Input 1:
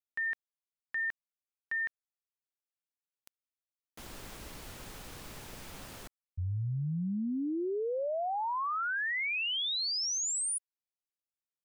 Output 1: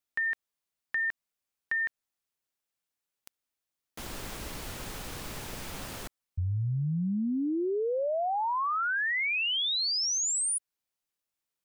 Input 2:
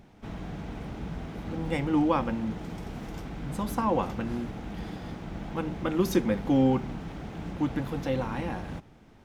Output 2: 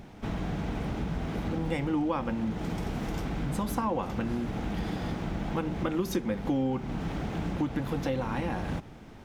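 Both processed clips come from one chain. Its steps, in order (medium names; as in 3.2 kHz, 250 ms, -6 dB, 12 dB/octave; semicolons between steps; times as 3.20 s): compression 4:1, threshold -35 dBFS; trim +7 dB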